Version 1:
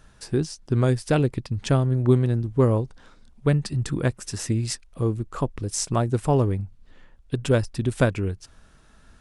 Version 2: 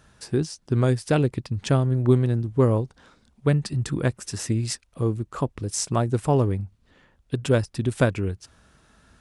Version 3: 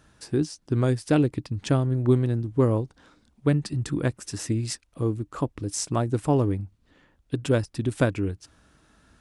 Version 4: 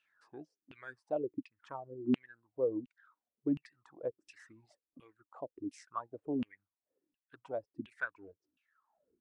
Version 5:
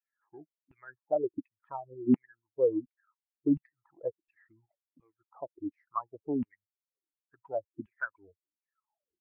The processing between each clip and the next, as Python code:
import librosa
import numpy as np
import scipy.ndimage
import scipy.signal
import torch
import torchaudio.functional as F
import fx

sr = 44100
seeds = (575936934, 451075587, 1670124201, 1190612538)

y1 = scipy.signal.sosfilt(scipy.signal.butter(2, 57.0, 'highpass', fs=sr, output='sos'), x)
y2 = fx.peak_eq(y1, sr, hz=300.0, db=8.5, octaves=0.21)
y2 = y2 * librosa.db_to_amplitude(-2.5)
y3 = fx.filter_lfo_bandpass(y2, sr, shape='saw_down', hz=1.4, low_hz=240.0, high_hz=2800.0, q=7.8)
y3 = fx.dereverb_blind(y3, sr, rt60_s=1.2)
y3 = y3 * librosa.db_to_amplitude(-1.5)
y4 = fx.bin_expand(y3, sr, power=1.5)
y4 = scipy.signal.sosfilt(scipy.signal.butter(4, 1400.0, 'lowpass', fs=sr, output='sos'), y4)
y4 = y4 * librosa.db_to_amplitude(7.5)